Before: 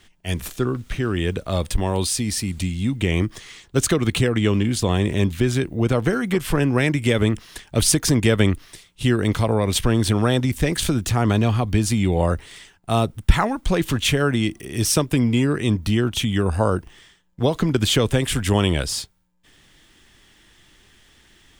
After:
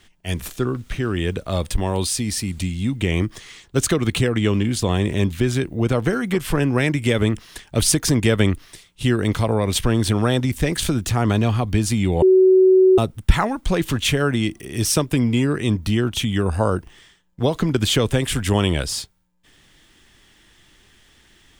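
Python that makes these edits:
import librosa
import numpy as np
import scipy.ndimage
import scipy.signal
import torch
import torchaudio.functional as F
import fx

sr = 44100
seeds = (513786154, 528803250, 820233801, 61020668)

y = fx.edit(x, sr, fx.bleep(start_s=12.22, length_s=0.76, hz=375.0, db=-9.0), tone=tone)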